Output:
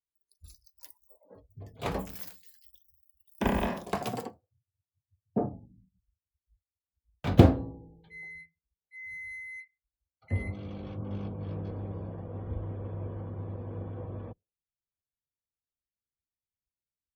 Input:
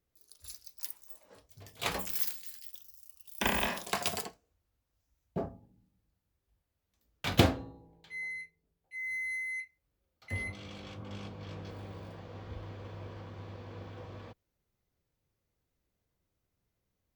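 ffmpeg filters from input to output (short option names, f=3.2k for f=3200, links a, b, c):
-filter_complex "[0:a]asettb=1/sr,asplit=3[a][b][c];[a]atrim=end=4.024[d];[b]atrim=start=4.02:end=5.53,asetpts=PTS-STARTPTS,afade=t=in:d=0.004:c=qsin,afade=t=out:st=1.506:d=0.004:c=qsin,afreqshift=39[e];[c]atrim=start=5.526[f];[d][e]acrossfade=d=0.004:c1=hsin:c2=qsin[g];[g][f]acrossfade=d=0.004:c1=qsin:c2=hsin,afftdn=nr=31:nf=-59,tiltshelf=f=1.2k:g=9.5,volume=-1dB"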